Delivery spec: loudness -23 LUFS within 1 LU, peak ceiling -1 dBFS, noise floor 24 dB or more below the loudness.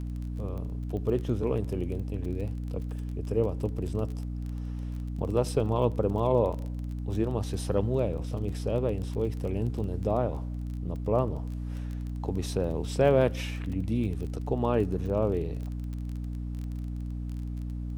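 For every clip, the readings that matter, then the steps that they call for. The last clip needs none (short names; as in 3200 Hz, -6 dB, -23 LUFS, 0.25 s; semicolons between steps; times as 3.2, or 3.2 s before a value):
ticks 21/s; hum 60 Hz; harmonics up to 300 Hz; hum level -32 dBFS; loudness -30.5 LUFS; peak -10.5 dBFS; loudness target -23.0 LUFS
-> de-click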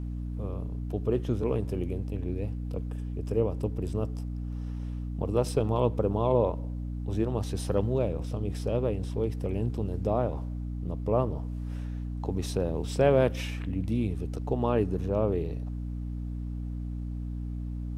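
ticks 0/s; hum 60 Hz; harmonics up to 300 Hz; hum level -32 dBFS
-> notches 60/120/180/240/300 Hz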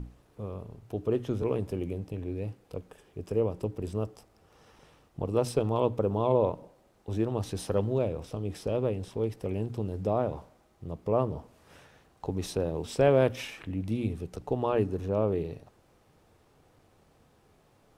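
hum none; loudness -30.5 LUFS; peak -11.0 dBFS; loudness target -23.0 LUFS
-> gain +7.5 dB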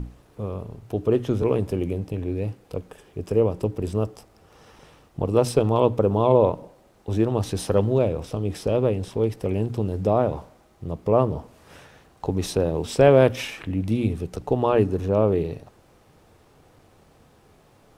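loudness -23.0 LUFS; peak -3.5 dBFS; noise floor -57 dBFS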